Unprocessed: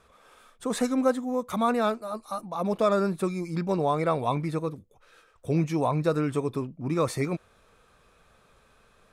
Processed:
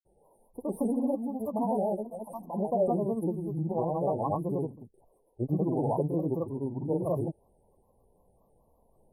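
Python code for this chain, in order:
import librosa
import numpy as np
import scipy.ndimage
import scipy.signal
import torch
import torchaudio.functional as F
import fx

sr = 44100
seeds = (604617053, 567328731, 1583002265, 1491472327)

y = fx.brickwall_bandstop(x, sr, low_hz=1000.0, high_hz=9500.0)
y = fx.granulator(y, sr, seeds[0], grain_ms=100.0, per_s=29.0, spray_ms=100.0, spread_st=3)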